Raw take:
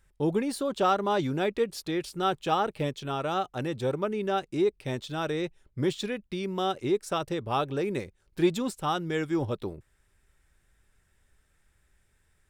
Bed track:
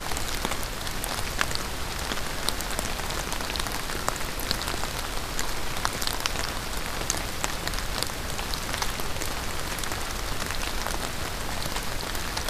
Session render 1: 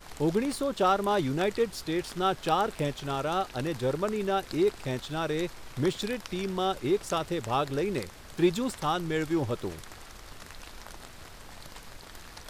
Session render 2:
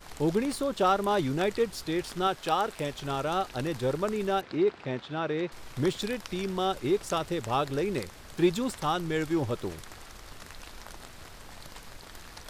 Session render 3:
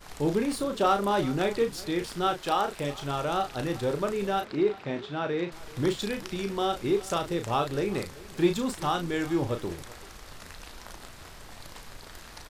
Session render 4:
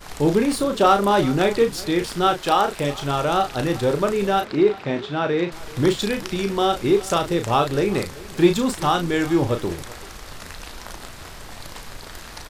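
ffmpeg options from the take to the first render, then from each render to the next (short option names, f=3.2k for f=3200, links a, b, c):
-filter_complex "[1:a]volume=-16dB[a];[0:a][a]amix=inputs=2:normalize=0"
-filter_complex "[0:a]asettb=1/sr,asplit=3[a][b][c];[a]atrim=end=2.274[d];[b]atrim=start=2.27:end=2.93,asetpts=PTS-STARTPTS,afade=t=in:d=0.004:c=qsin,afade=t=out:st=0.656:d=0.004:c=qsin,lowshelf=f=300:g=-7[e];[c]atrim=start=2.926[f];[d][e]acrossfade=d=0.004:c1=hsin:c2=qsin[g];[g][f]acrossfade=d=0.004:c1=qsin:c2=hsin,asettb=1/sr,asplit=3[h][i][j];[h]atrim=end=4.414[k];[i]atrim=start=4.41:end=5.52,asetpts=PTS-STARTPTS,afade=t=in:d=0.004:c=qsin,afade=t=out:st=1.106:d=0.004:c=qsin,highpass=130,lowpass=3.1k[l];[j]atrim=start=5.516[m];[k][l]acrossfade=d=0.004:c1=hsin:c2=qsin[n];[n][m]acrossfade=d=0.004:c1=qsin:c2=hsin"
-filter_complex "[0:a]asplit=2[a][b];[b]adelay=35,volume=-7dB[c];[a][c]amix=inputs=2:normalize=0,aecho=1:1:383:0.1"
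-af "volume=8dB"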